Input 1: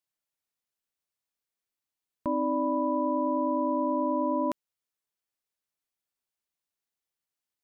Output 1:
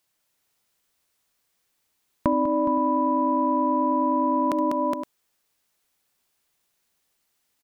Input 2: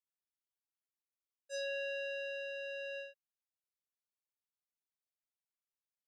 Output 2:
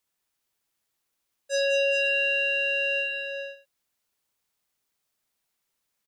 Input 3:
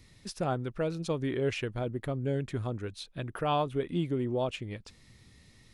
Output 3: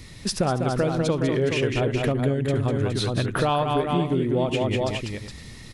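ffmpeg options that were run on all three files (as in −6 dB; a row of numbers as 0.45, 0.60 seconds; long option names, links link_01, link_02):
-af "acontrast=82,aecho=1:1:69|70|197|416|517:0.106|0.112|0.531|0.422|0.133,acompressor=threshold=-27dB:ratio=6,volume=7.5dB"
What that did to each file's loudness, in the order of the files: +5.0, +16.5, +9.0 LU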